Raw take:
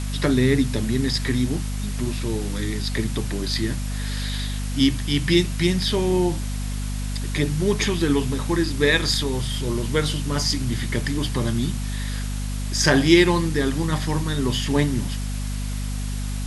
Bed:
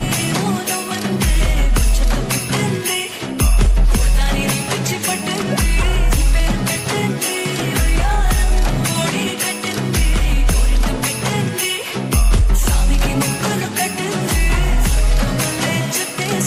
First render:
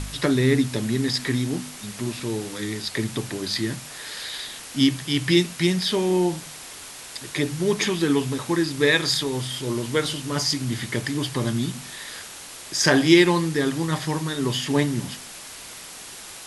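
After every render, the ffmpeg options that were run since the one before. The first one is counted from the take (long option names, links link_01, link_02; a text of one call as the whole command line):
ffmpeg -i in.wav -af "bandreject=frequency=50:width_type=h:width=4,bandreject=frequency=100:width_type=h:width=4,bandreject=frequency=150:width_type=h:width=4,bandreject=frequency=200:width_type=h:width=4,bandreject=frequency=250:width_type=h:width=4" out.wav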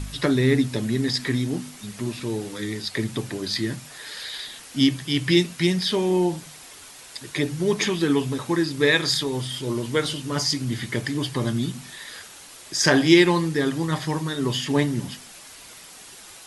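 ffmpeg -i in.wav -af "afftdn=noise_reduction=6:noise_floor=-40" out.wav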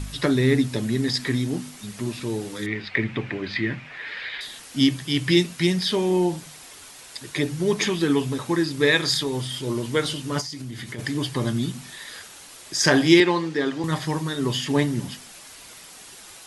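ffmpeg -i in.wav -filter_complex "[0:a]asettb=1/sr,asplit=3[link_01][link_02][link_03];[link_01]atrim=end=2.664[link_04];[link_02]atrim=start=2.66:end=4.41,asetpts=PTS-STARTPTS,afade=type=in:duration=0.004:curve=qsin,afade=type=out:start_time=1.746:duration=0.004:curve=qsin,lowpass=frequency=2300:width_type=q:width=3.2[link_05];[link_03]atrim=start=4.406[link_06];[link_04][link_05]acrossfade=duration=0.004:curve1=hsin:curve2=qsin[link_07];[link_07][link_06]acrossfade=duration=0.004:curve1=qsin:curve2=hsin,asplit=3[link_08][link_09][link_10];[link_08]afade=type=out:start_time=10.4:duration=0.02[link_11];[link_09]acompressor=threshold=-30dB:ratio=12:attack=3.2:release=140:knee=1:detection=peak,afade=type=in:start_time=10.4:duration=0.02,afade=type=out:start_time=10.98:duration=0.02[link_12];[link_10]afade=type=in:start_time=10.98:duration=0.02[link_13];[link_11][link_12][link_13]amix=inputs=3:normalize=0,asettb=1/sr,asplit=3[link_14][link_15][link_16];[link_14]atrim=end=13.204[link_17];[link_15]atrim=start=13.2:end=13.84,asetpts=PTS-STARTPTS,afade=type=in:duration=0.004:curve=qsin,afade=type=out:start_time=0.636:duration=0.004:curve=qsin,highpass=240,lowpass=5100[link_18];[link_16]atrim=start=13.836[link_19];[link_17][link_18]acrossfade=duration=0.004:curve1=hsin:curve2=qsin[link_20];[link_20][link_19]acrossfade=duration=0.004:curve1=qsin:curve2=hsin" out.wav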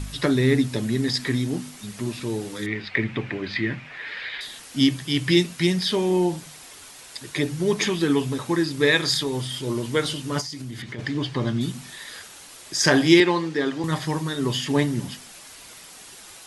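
ffmpeg -i in.wav -filter_complex "[0:a]asettb=1/sr,asplit=3[link_01][link_02][link_03];[link_01]atrim=end=10.824[link_04];[link_02]atrim=start=10.82:end=11.61,asetpts=PTS-STARTPTS,afade=type=in:duration=0.004:curve=qsin,afade=type=out:start_time=0.786:duration=0.004:curve=qsin,lowpass=4600[link_05];[link_03]atrim=start=11.606[link_06];[link_04][link_05]acrossfade=duration=0.004:curve1=hsin:curve2=qsin[link_07];[link_07][link_06]acrossfade=duration=0.004:curve1=qsin:curve2=hsin" out.wav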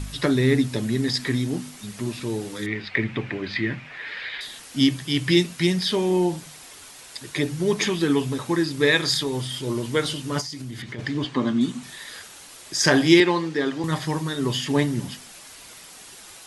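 ffmpeg -i in.wav -filter_complex "[0:a]asettb=1/sr,asplit=3[link_01][link_02][link_03];[link_01]atrim=end=11.244[link_04];[link_02]atrim=start=11.24:end=11.83,asetpts=PTS-STARTPTS,afade=type=in:duration=0.004:curve=qsin,afade=type=out:start_time=0.586:duration=0.004:curve=qsin,highpass=200,equalizer=frequency=250:width_type=q:width=4:gain=10,equalizer=frequency=1100:width_type=q:width=4:gain=5,equalizer=frequency=5100:width_type=q:width=4:gain=-5,lowpass=frequency=9100:width=0.5412,lowpass=frequency=9100:width=1.3066[link_05];[link_03]atrim=start=11.826[link_06];[link_04][link_05]acrossfade=duration=0.004:curve1=hsin:curve2=qsin[link_07];[link_07][link_06]acrossfade=duration=0.004:curve1=qsin:curve2=hsin" out.wav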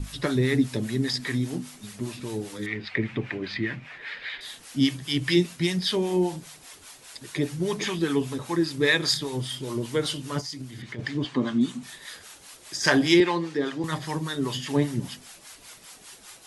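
ffmpeg -i in.wav -filter_complex "[0:a]acrossover=split=610[link_01][link_02];[link_01]aeval=exprs='val(0)*(1-0.7/2+0.7/2*cos(2*PI*5*n/s))':channel_layout=same[link_03];[link_02]aeval=exprs='val(0)*(1-0.7/2-0.7/2*cos(2*PI*5*n/s))':channel_layout=same[link_04];[link_03][link_04]amix=inputs=2:normalize=0" out.wav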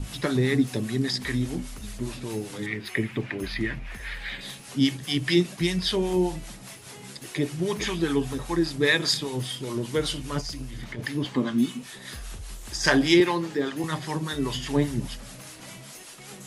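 ffmpeg -i in.wav -i bed.wav -filter_complex "[1:a]volume=-26.5dB[link_01];[0:a][link_01]amix=inputs=2:normalize=0" out.wav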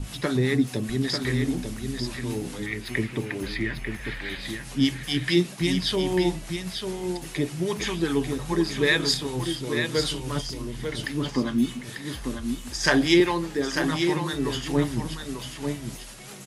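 ffmpeg -i in.wav -af "aecho=1:1:894:0.473" out.wav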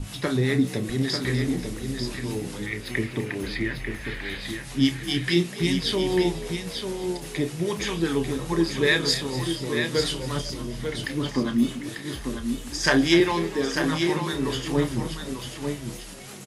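ffmpeg -i in.wav -filter_complex "[0:a]asplit=2[link_01][link_02];[link_02]adelay=30,volume=-11dB[link_03];[link_01][link_03]amix=inputs=2:normalize=0,asplit=5[link_04][link_05][link_06][link_07][link_08];[link_05]adelay=248,afreqshift=56,volume=-15.5dB[link_09];[link_06]adelay=496,afreqshift=112,volume=-21.7dB[link_10];[link_07]adelay=744,afreqshift=168,volume=-27.9dB[link_11];[link_08]adelay=992,afreqshift=224,volume=-34.1dB[link_12];[link_04][link_09][link_10][link_11][link_12]amix=inputs=5:normalize=0" out.wav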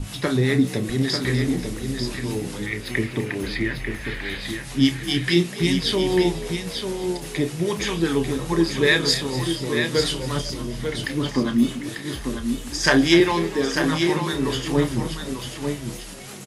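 ffmpeg -i in.wav -af "volume=3dB" out.wav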